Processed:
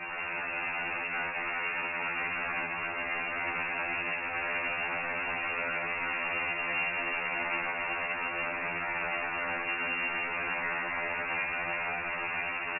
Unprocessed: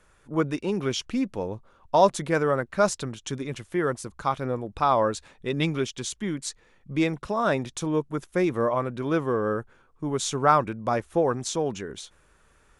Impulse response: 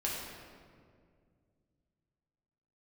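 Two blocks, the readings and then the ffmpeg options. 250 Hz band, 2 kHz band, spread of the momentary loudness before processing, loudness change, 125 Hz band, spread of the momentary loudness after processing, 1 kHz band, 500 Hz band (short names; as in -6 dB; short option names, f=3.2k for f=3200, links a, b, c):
-18.0 dB, +7.0 dB, 12 LU, -5.0 dB, -19.0 dB, 2 LU, -7.5 dB, -15.0 dB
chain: -filter_complex "[0:a]aeval=exprs='val(0)+0.5*0.0668*sgn(val(0))':c=same,adynamicequalizer=threshold=0.0178:dfrequency=420:dqfactor=4.2:tfrequency=420:tqfactor=4.2:attack=5:release=100:ratio=0.375:range=2:mode=cutabove:tftype=bell,acrossover=split=160|650[a][b][c];[a]acompressor=threshold=-41dB:ratio=4[d];[b]acompressor=threshold=-33dB:ratio=4[e];[c]acompressor=threshold=-24dB:ratio=4[f];[d][e][f]amix=inputs=3:normalize=0,alimiter=limit=-19.5dB:level=0:latency=1:release=11,dynaudnorm=f=150:g=21:m=7.5dB,aresample=8000,aeval=exprs='(mod(25.1*val(0)+1,2)-1)/25.1':c=same,aresample=44100,aecho=1:1:375:0.473[g];[1:a]atrim=start_sample=2205,asetrate=52920,aresample=44100[h];[g][h]afir=irnorm=-1:irlink=0,lowpass=f=2.4k:t=q:w=0.5098,lowpass=f=2.4k:t=q:w=0.6013,lowpass=f=2.4k:t=q:w=0.9,lowpass=f=2.4k:t=q:w=2.563,afreqshift=-2800,afftfilt=real='re*2*eq(mod(b,4),0)':imag='im*2*eq(mod(b,4),0)':win_size=2048:overlap=0.75,volume=-1dB"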